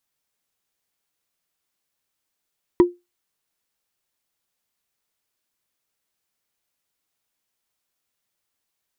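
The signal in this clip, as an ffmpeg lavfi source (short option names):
-f lavfi -i "aevalsrc='0.531*pow(10,-3*t/0.21)*sin(2*PI*352*t)+0.168*pow(10,-3*t/0.062)*sin(2*PI*970.5*t)+0.0531*pow(10,-3*t/0.028)*sin(2*PI*1902.2*t)+0.0168*pow(10,-3*t/0.015)*sin(2*PI*3144.4*t)+0.00531*pow(10,-3*t/0.009)*sin(2*PI*4695.7*t)':d=0.45:s=44100"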